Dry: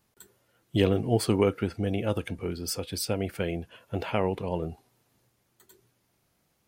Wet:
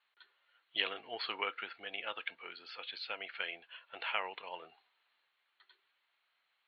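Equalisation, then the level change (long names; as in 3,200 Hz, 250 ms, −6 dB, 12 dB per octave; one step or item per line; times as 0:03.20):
high-pass filter 1,300 Hz 12 dB per octave
Chebyshev low-pass with heavy ripple 4,300 Hz, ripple 3 dB
parametric band 2,100 Hz +4.5 dB 1.1 octaves
0.0 dB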